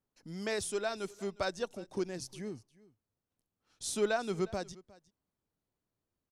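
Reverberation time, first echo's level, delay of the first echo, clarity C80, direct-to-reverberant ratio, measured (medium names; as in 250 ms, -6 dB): no reverb, -22.0 dB, 358 ms, no reverb, no reverb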